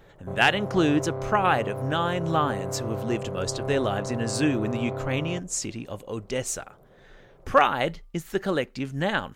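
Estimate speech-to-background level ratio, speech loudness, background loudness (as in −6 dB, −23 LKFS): 6.5 dB, −26.5 LKFS, −33.0 LKFS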